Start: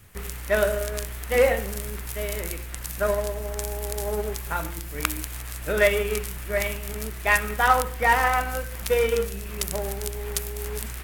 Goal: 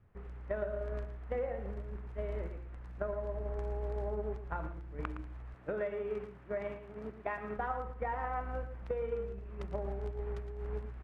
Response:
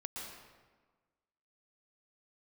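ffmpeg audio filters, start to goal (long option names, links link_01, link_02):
-filter_complex "[0:a]lowpass=1100,agate=range=-9dB:threshold=-31dB:ratio=16:detection=peak,asettb=1/sr,asplit=3[link_01][link_02][link_03];[link_01]atrim=end=5.544[link_04];[link_02]atrim=start=5.54:end=7.58,asetpts=PTS-STARTPTS,afade=type=in:duration=0.004:curve=qsin,afade=type=out:start_time=2.036:duration=0.004:curve=qsin,highpass=130[link_05];[link_03]atrim=start=7.576[link_06];[link_04][link_05]acrossfade=duration=0.004:curve1=hsin:curve2=qsin[link_07];[link_07][link_06]acrossfade=duration=0.004:curve1=qsin:curve2=hsin,acompressor=threshold=-32dB:ratio=6,aecho=1:1:114:0.282,volume=-2.5dB"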